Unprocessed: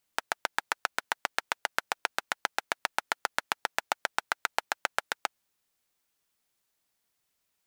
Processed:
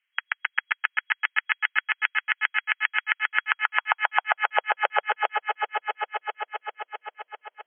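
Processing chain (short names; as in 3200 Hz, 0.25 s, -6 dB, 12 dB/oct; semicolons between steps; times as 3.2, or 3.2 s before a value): FFT band-pass 170–3300 Hz; high-pass sweep 1900 Hz -> 500 Hz, 3.27–4.65; swelling echo 0.131 s, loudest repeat 5, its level -9.5 dB; gain +2.5 dB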